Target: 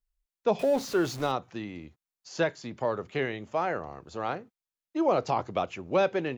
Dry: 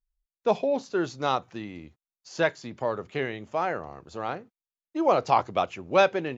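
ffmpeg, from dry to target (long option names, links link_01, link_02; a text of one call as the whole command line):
ffmpeg -i in.wav -filter_complex "[0:a]asettb=1/sr,asplit=3[link_01][link_02][link_03];[link_01]atrim=end=0.594[link_04];[link_02]atrim=start=0.59:end=1.32,asetpts=PTS-STARTPTS,afade=type=in:duration=0.004:curve=qsin,afade=type=out:start_time=0.726:duration=0.004:curve=qsin,aeval=exprs='val(0)+0.5*0.015*sgn(val(0))':channel_layout=same[link_05];[link_03]atrim=start=1.316[link_06];[link_04][link_05]acrossfade=duration=0.004:curve1=hsin:curve2=qsin[link_07];[link_07][link_06]acrossfade=duration=0.004:curve1=qsin:curve2=hsin,acrossover=split=500[link_08][link_09];[link_09]alimiter=limit=-20dB:level=0:latency=1:release=147[link_10];[link_08][link_10]amix=inputs=2:normalize=0" out.wav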